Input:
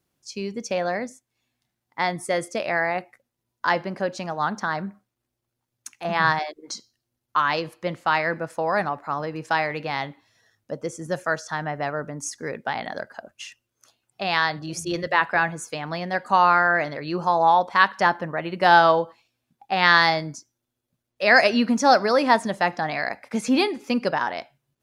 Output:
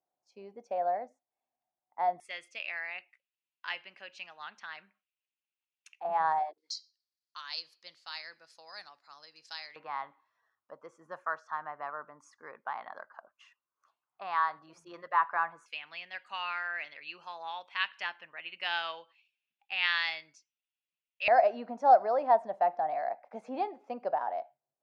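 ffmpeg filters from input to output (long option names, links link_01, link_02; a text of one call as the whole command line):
ffmpeg -i in.wav -af "asetnsamples=nb_out_samples=441:pad=0,asendcmd='2.2 bandpass f 2700;6 bandpass f 810;6.58 bandpass f 4600;9.76 bandpass f 1100;15.66 bandpass f 2700;21.28 bandpass f 710',bandpass=frequency=730:width_type=q:width=5:csg=0" out.wav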